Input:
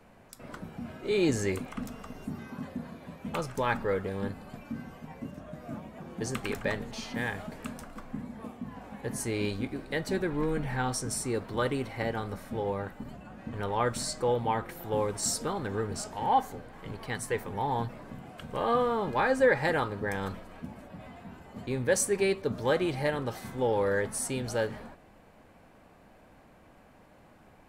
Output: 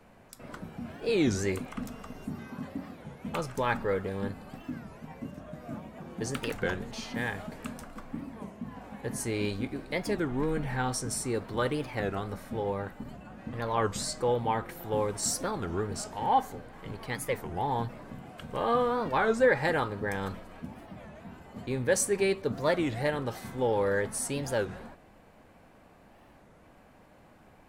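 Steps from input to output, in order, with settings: record warp 33 1/3 rpm, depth 250 cents

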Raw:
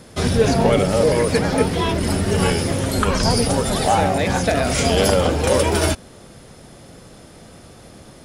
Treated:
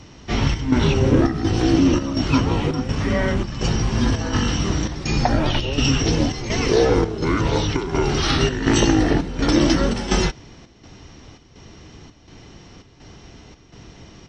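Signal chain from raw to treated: chopper 2.4 Hz, depth 60%, duty 75%; speed mistake 78 rpm record played at 45 rpm

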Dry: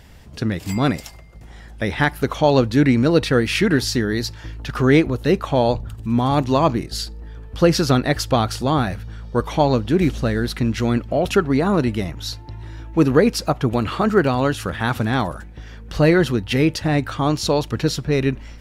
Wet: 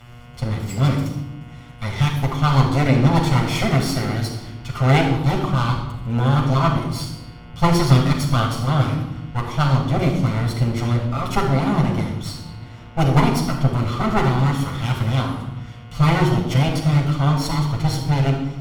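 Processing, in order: minimum comb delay 0.91 ms; buzz 120 Hz, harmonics 29, -43 dBFS -4 dB/oct; added harmonics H 3 -16 dB, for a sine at -5 dBFS; reverb RT60 0.95 s, pre-delay 7 ms, DRR -0.5 dB; gain -2 dB

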